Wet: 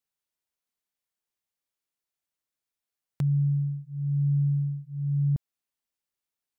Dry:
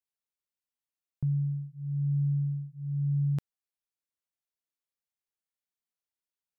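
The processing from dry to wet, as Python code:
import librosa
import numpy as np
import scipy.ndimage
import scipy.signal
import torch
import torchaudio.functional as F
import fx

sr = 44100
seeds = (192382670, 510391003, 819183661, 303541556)

y = x[::-1].copy()
y = F.gain(torch.from_numpy(y), 3.5).numpy()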